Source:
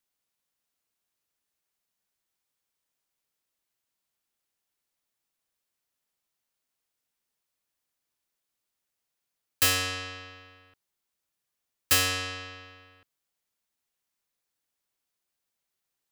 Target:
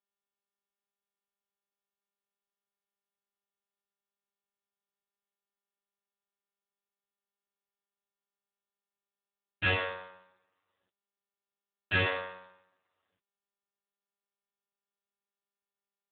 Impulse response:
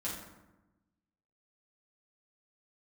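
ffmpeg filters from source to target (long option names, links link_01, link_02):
-filter_complex "[0:a]aeval=exprs='0.316*(cos(1*acos(clip(val(0)/0.316,-1,1)))-cos(1*PI/2))+0.0501*(cos(6*acos(clip(val(0)/0.316,-1,1)))-cos(6*PI/2))+0.0447*(cos(7*acos(clip(val(0)/0.316,-1,1)))-cos(7*PI/2))+0.00224*(cos(8*acos(clip(val(0)/0.316,-1,1)))-cos(8*PI/2))':channel_layout=same,asplit=2[link_01][link_02];[link_02]asoftclip=type=tanh:threshold=-27dB,volume=-12dB[link_03];[link_01][link_03]amix=inputs=2:normalize=0,acrusher=bits=3:mode=log:mix=0:aa=0.000001,asoftclip=type=hard:threshold=-13dB[link_04];[1:a]atrim=start_sample=2205,atrim=end_sample=3969,asetrate=23373,aresample=44100[link_05];[link_04][link_05]afir=irnorm=-1:irlink=0,volume=-2dB" -ar 8000 -c:a libopencore_amrnb -b:a 7400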